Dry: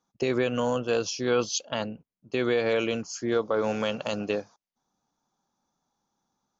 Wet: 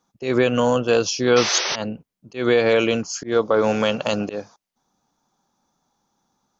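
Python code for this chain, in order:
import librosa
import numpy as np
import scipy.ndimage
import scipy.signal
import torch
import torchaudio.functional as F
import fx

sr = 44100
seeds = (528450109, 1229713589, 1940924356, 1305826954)

y = fx.auto_swell(x, sr, attack_ms=154.0)
y = fx.spec_paint(y, sr, seeds[0], shape='noise', start_s=1.36, length_s=0.4, low_hz=340.0, high_hz=6200.0, level_db=-32.0)
y = y * librosa.db_to_amplitude(8.0)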